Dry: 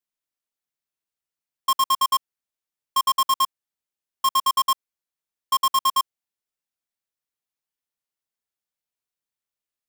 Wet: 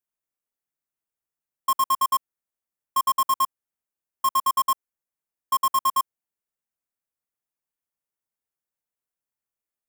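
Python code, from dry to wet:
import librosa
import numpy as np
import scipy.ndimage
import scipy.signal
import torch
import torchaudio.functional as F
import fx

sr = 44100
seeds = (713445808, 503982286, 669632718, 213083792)

y = fx.peak_eq(x, sr, hz=3900.0, db=-10.5, octaves=1.3)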